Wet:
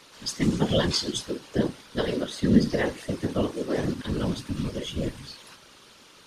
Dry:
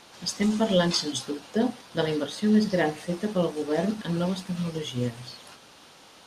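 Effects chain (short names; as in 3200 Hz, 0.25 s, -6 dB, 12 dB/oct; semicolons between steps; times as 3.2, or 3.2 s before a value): bell 720 Hz -14.5 dB 0.28 oct; whisperiser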